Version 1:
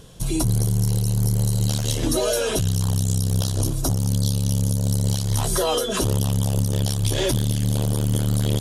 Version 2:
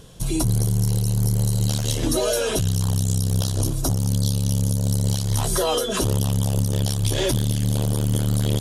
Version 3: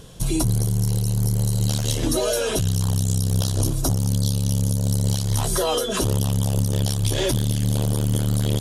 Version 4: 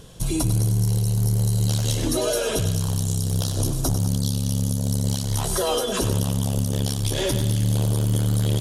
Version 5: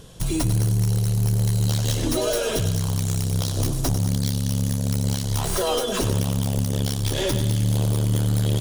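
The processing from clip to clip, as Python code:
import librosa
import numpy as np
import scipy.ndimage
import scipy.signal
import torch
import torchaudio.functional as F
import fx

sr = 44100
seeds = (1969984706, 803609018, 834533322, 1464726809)

y1 = x
y2 = fx.rider(y1, sr, range_db=3, speed_s=0.5)
y3 = fx.echo_feedback(y2, sr, ms=99, feedback_pct=53, wet_db=-10)
y3 = y3 * 10.0 ** (-1.5 / 20.0)
y4 = fx.tracing_dist(y3, sr, depth_ms=0.055)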